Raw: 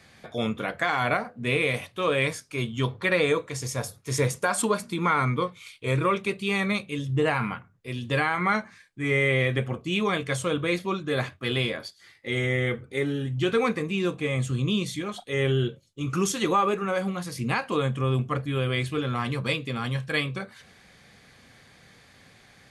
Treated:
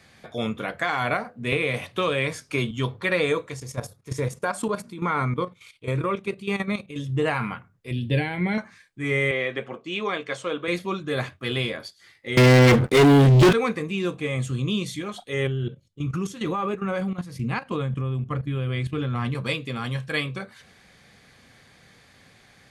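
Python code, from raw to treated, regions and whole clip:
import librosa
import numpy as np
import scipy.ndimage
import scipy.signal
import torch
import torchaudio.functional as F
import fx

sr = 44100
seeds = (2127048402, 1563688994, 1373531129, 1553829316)

y = fx.chain(x, sr, fx.high_shelf(hz=7000.0, db=-5.5),
    fx.band_squash(depth_pct=100), at=(1.52, 2.71))
y = fx.chain(y, sr, fx.tilt_shelf(db=3.0, hz=1400.0),
    fx.level_steps(step_db=12), at=(3.54, 6.96))
y = fx.chain(y, sr, fx.low_shelf(hz=360.0, db=7.5),
    fx.fixed_phaser(hz=2900.0, stages=4), at=(7.91, 8.58))
y = fx.chain(y, sr, fx.highpass(hz=310.0, slope=12),
    fx.air_absorb(metres=93.0), at=(9.31, 10.68))
y = fx.chain(y, sr, fx.highpass(hz=110.0, slope=24),
    fx.low_shelf(hz=450.0, db=5.5),
    fx.leveller(passes=5), at=(12.37, 13.53))
y = fx.chain(y, sr, fx.bass_treble(bass_db=8, treble_db=-5),
    fx.level_steps(step_db=13), at=(15.47, 19.35))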